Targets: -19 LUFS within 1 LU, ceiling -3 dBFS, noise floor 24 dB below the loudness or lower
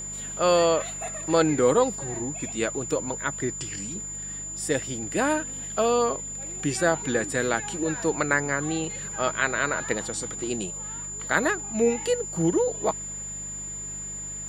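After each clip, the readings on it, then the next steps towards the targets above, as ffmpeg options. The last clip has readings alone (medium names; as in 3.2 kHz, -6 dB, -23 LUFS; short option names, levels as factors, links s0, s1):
hum 50 Hz; highest harmonic 200 Hz; hum level -43 dBFS; steady tone 7.1 kHz; tone level -33 dBFS; loudness -26.0 LUFS; peak level -6.0 dBFS; loudness target -19.0 LUFS
-> -af "bandreject=f=50:t=h:w=4,bandreject=f=100:t=h:w=4,bandreject=f=150:t=h:w=4,bandreject=f=200:t=h:w=4"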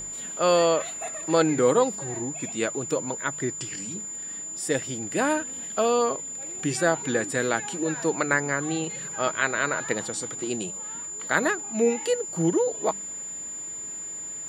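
hum not found; steady tone 7.1 kHz; tone level -33 dBFS
-> -af "bandreject=f=7100:w=30"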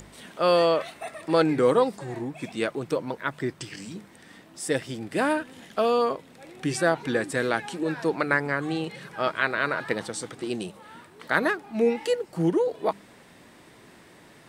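steady tone not found; loudness -26.5 LUFS; peak level -6.0 dBFS; loudness target -19.0 LUFS
-> -af "volume=2.37,alimiter=limit=0.708:level=0:latency=1"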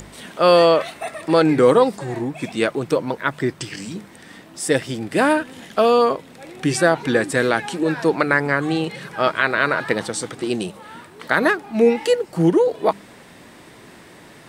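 loudness -19.5 LUFS; peak level -3.0 dBFS; noise floor -45 dBFS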